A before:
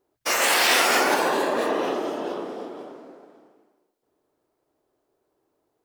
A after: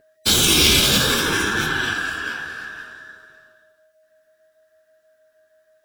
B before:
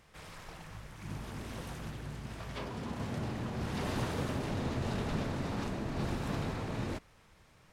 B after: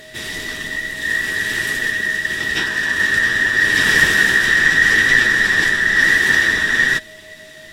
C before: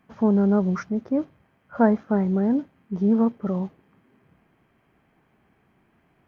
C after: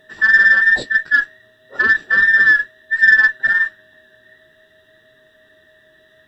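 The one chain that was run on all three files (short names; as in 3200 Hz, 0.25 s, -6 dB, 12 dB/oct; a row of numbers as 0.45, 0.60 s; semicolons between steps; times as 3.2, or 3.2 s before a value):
band inversion scrambler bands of 2000 Hz; whine 630 Hz -53 dBFS; limiter -14 dBFS; flange 0.58 Hz, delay 7.2 ms, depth 8.5 ms, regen -30%; added harmonics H 3 -26 dB, 4 -38 dB, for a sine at -14.5 dBFS; band shelf 900 Hz -14 dB; normalise peaks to -1.5 dBFS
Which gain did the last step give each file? +15.0, +29.0, +18.5 dB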